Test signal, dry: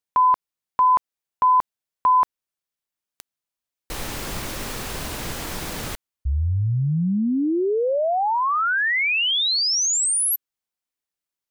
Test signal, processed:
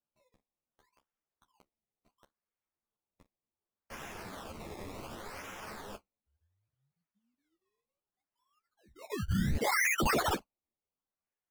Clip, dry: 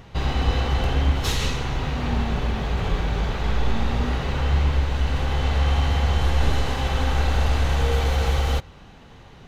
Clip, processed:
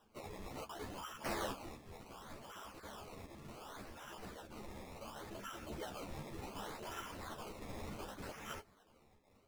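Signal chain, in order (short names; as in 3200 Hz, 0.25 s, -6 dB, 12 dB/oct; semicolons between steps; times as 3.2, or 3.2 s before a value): random spectral dropouts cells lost 28%; elliptic high-pass 2900 Hz, stop band 50 dB; flange 1.6 Hz, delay 8.8 ms, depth 7.2 ms, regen +52%; decimation with a swept rate 20×, swing 100% 0.68 Hz; ensemble effect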